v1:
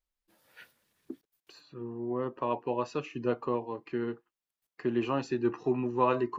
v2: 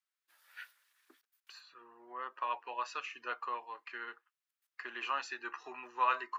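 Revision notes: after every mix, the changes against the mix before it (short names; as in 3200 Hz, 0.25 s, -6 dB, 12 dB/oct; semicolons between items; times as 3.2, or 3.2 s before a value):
master: add resonant high-pass 1400 Hz, resonance Q 1.7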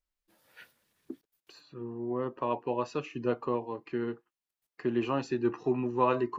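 master: remove resonant high-pass 1400 Hz, resonance Q 1.7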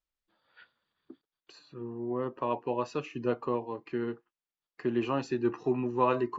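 first voice: add rippled Chebyshev low-pass 4800 Hz, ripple 9 dB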